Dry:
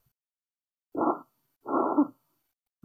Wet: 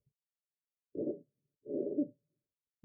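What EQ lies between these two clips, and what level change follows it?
high-pass 40 Hz; rippled Chebyshev low-pass 600 Hz, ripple 9 dB; -1.0 dB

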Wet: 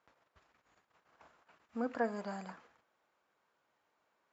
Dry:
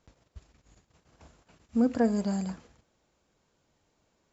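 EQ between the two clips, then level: band-pass filter 1.3 kHz, Q 1.1; +1.0 dB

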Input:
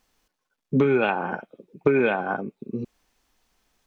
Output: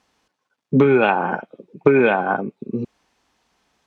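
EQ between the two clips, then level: high-pass 78 Hz; distance through air 54 m; peaking EQ 900 Hz +2.5 dB; +5.5 dB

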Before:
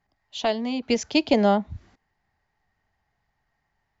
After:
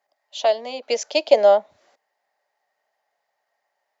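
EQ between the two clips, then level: resonant high-pass 570 Hz, resonance Q 4.9; treble shelf 3.3 kHz +8.5 dB; -3.5 dB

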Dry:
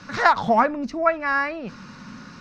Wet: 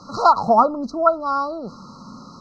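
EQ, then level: brick-wall FIR band-stop 1.4–3.9 kHz; bass shelf 330 Hz -6.5 dB; treble shelf 5.9 kHz -8.5 dB; +5.0 dB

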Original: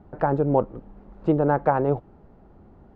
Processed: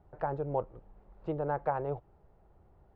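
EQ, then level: distance through air 65 m; peaking EQ 240 Hz -14 dB 0.89 oct; peaking EQ 1.4 kHz -2.5 dB 0.77 oct; -8.5 dB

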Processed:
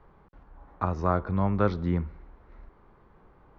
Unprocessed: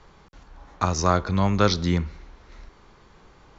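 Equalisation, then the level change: low-pass 1.4 kHz 12 dB/octave; -4.0 dB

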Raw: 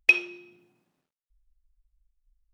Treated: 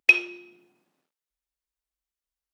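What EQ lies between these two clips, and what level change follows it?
high-pass 230 Hz 12 dB/octave; +2.5 dB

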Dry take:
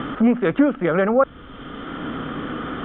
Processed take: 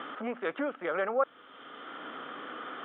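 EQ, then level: high-pass 530 Hz 12 dB/octave; -8.5 dB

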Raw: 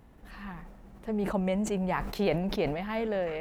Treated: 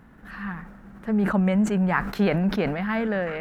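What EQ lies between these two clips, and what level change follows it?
peaking EQ 200 Hz +9.5 dB 1.1 oct; peaking EQ 1.5 kHz +14 dB 0.92 oct; 0.0 dB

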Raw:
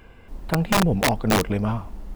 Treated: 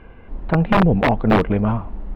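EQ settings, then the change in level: distance through air 480 m; peaking EQ 92 Hz -2.5 dB 1.2 oct; +6.5 dB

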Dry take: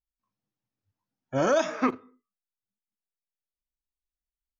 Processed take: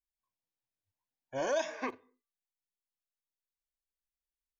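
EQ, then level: Butterworth band-stop 1.3 kHz, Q 4.4; peaking EQ 180 Hz -14.5 dB 1.6 oct; -5.5 dB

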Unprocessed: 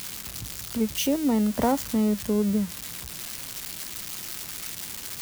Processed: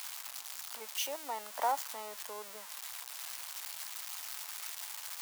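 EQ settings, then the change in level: ladder high-pass 690 Hz, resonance 40%; +1.0 dB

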